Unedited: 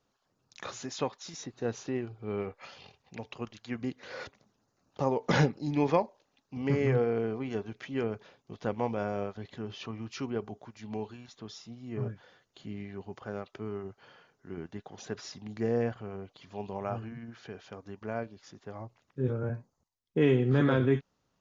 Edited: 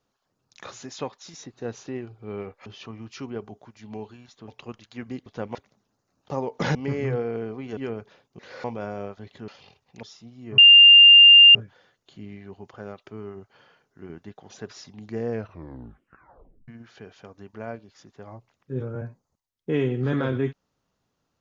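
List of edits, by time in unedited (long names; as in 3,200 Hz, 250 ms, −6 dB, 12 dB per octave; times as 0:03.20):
0:02.66–0:03.21: swap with 0:09.66–0:11.48
0:03.99–0:04.24: swap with 0:08.53–0:08.82
0:05.44–0:06.57: remove
0:07.59–0:07.91: remove
0:12.03: insert tone 2,800 Hz −7 dBFS 0.97 s
0:15.78: tape stop 1.38 s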